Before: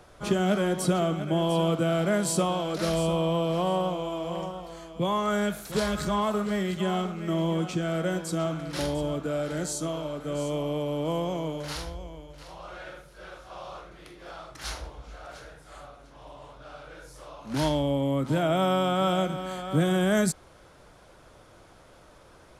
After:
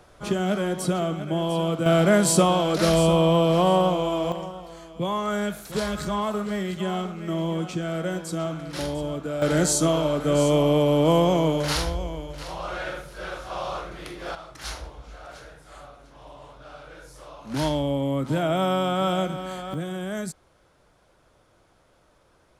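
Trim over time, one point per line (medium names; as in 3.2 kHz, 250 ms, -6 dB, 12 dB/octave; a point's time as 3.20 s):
0 dB
from 1.86 s +7 dB
from 4.32 s 0 dB
from 9.42 s +10 dB
from 14.35 s +1 dB
from 19.74 s -7.5 dB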